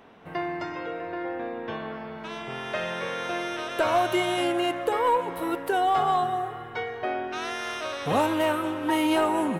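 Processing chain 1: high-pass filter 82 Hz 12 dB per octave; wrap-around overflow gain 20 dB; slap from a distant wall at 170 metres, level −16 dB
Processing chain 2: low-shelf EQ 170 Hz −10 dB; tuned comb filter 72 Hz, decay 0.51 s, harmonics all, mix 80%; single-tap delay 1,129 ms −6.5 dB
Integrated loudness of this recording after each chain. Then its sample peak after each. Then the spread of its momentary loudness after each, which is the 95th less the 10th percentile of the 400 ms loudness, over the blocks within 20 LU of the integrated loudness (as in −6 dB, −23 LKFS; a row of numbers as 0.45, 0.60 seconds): −27.5, −35.5 LKFS; −19.0, −18.5 dBFS; 11, 13 LU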